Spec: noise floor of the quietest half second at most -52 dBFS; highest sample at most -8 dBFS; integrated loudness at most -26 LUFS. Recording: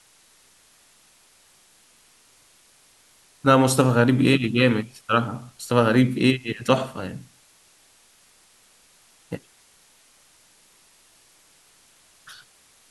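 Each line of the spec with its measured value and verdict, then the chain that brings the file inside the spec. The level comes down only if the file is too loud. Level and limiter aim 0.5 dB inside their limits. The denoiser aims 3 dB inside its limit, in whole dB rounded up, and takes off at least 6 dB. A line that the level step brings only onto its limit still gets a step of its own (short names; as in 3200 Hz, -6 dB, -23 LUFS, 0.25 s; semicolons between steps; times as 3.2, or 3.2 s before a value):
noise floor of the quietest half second -57 dBFS: OK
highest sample -2.5 dBFS: fail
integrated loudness -20.5 LUFS: fail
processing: gain -6 dB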